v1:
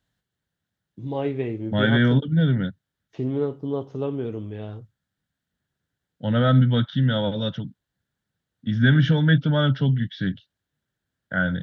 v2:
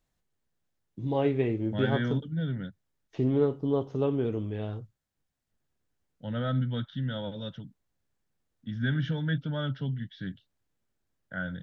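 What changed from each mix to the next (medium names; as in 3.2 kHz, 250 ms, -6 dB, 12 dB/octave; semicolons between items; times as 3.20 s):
second voice -11.5 dB; master: remove high-pass 44 Hz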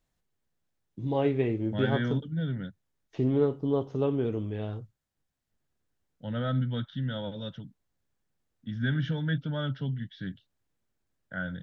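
no change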